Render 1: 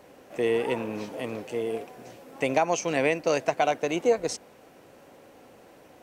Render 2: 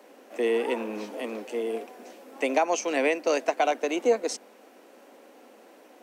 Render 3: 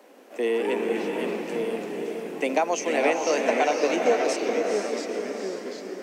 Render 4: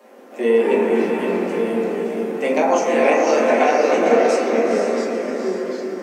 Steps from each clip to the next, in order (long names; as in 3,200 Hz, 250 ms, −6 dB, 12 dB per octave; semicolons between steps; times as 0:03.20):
Butterworth high-pass 210 Hz 72 dB per octave
delay with pitch and tempo change per echo 155 ms, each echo −2 semitones, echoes 3, each echo −6 dB; feedback delay with all-pass diffusion 475 ms, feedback 43%, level −4 dB
convolution reverb RT60 1.4 s, pre-delay 6 ms, DRR −7 dB; level −1 dB